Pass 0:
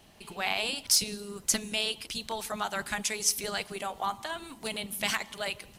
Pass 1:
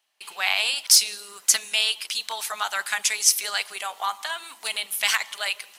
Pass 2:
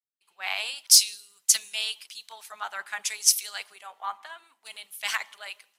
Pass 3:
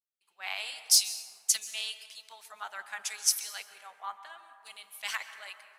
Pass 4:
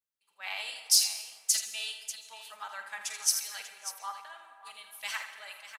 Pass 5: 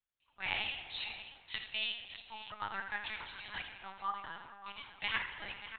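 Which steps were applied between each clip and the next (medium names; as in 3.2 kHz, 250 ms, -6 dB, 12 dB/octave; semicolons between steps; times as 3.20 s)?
gate with hold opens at -43 dBFS; high-pass 1.1 kHz 12 dB/octave; trim +8.5 dB
three bands expanded up and down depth 100%; trim -8.5 dB
plate-style reverb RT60 2.5 s, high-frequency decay 0.3×, pre-delay 115 ms, DRR 10.5 dB; trim -6 dB
comb of notches 360 Hz; multi-tap echo 48/81/591 ms -12/-9.5/-12.5 dB
LPC vocoder at 8 kHz pitch kept; trim +1.5 dB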